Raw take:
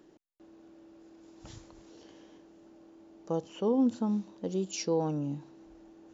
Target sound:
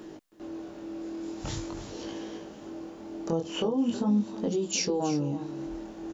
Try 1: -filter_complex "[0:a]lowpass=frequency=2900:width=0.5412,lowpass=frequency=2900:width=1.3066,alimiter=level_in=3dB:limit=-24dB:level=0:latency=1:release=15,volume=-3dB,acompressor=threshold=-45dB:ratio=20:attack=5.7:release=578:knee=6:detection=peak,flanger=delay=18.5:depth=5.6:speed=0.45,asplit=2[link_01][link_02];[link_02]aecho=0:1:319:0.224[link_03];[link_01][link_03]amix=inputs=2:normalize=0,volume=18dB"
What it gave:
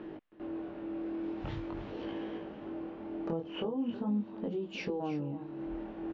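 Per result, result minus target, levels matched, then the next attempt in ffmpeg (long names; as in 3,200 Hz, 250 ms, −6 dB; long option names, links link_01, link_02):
downward compressor: peak gain reduction +7 dB; 4,000 Hz band −5.0 dB
-filter_complex "[0:a]lowpass=frequency=2900:width=0.5412,lowpass=frequency=2900:width=1.3066,alimiter=level_in=3dB:limit=-24dB:level=0:latency=1:release=15,volume=-3dB,acompressor=threshold=-37.5dB:ratio=20:attack=5.7:release=578:knee=6:detection=peak,flanger=delay=18.5:depth=5.6:speed=0.45,asplit=2[link_01][link_02];[link_02]aecho=0:1:319:0.224[link_03];[link_01][link_03]amix=inputs=2:normalize=0,volume=18dB"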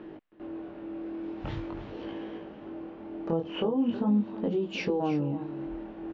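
4,000 Hz band −5.5 dB
-filter_complex "[0:a]alimiter=level_in=3dB:limit=-24dB:level=0:latency=1:release=15,volume=-3dB,acompressor=threshold=-37.5dB:ratio=20:attack=5.7:release=578:knee=6:detection=peak,flanger=delay=18.5:depth=5.6:speed=0.45,asplit=2[link_01][link_02];[link_02]aecho=0:1:319:0.224[link_03];[link_01][link_03]amix=inputs=2:normalize=0,volume=18dB"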